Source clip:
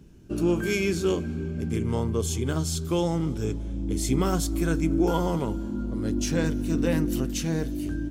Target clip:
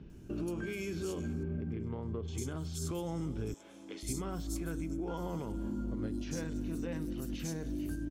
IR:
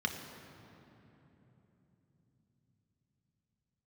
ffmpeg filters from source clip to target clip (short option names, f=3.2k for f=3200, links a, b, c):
-filter_complex "[0:a]asettb=1/sr,asplit=3[a][b][c];[a]atrim=end=3.544[d];[b]atrim=start=3.54:end=4.03,asetpts=PTS-STARTPTS,afade=t=in:d=0.004:c=qsin,afade=t=out:st=0.486:d=0.004:c=qsin,highpass=770[e];[c]atrim=start=4.026[f];[d][e]acrossfade=d=0.004:c1=hsin:c2=qsin[g];[g][f]acrossfade=d=0.004:c1=qsin:c2=hsin,acompressor=threshold=-29dB:ratio=6,alimiter=level_in=5dB:limit=-24dB:level=0:latency=1:release=145,volume=-5dB,asettb=1/sr,asplit=3[h][i][j];[h]atrim=end=1.334[k];[i]atrim=start=1.33:end=2.28,asetpts=PTS-STARTPTS,afade=t=in:d=0.004:c=qsin,afade=t=out:st=0.946:d=0.004:c=qsin,adynamicsmooth=sensitivity=6.5:basefreq=1.8k[l];[j]atrim=start=2.276[m];[k][l]acrossfade=d=0.004:c1=hsin:c2=qsin[n];[n][m]acrossfade=d=0.004:c1=qsin:c2=hsin,acrossover=split=4300[o][p];[p]adelay=100[q];[o][q]amix=inputs=2:normalize=0"